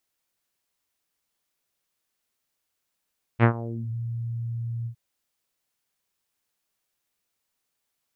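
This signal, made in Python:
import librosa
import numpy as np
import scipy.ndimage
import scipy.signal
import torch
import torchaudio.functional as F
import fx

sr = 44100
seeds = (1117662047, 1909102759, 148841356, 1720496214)

y = fx.sub_voice(sr, note=46, wave='saw', cutoff_hz=120.0, q=1.6, env_oct=4.5, env_s=0.53, attack_ms=47.0, decay_s=0.09, sustain_db=-18.0, release_s=0.09, note_s=1.47, slope=24)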